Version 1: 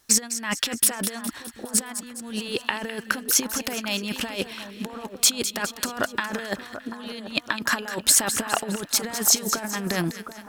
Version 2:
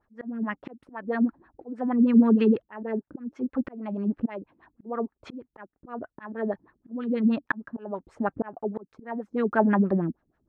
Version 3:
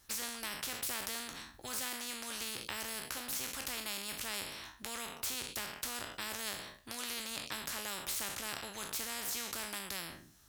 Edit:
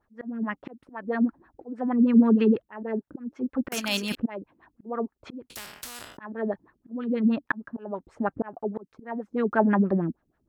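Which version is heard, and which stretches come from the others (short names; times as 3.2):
2
3.72–4.15 from 1
5.5–6.17 from 3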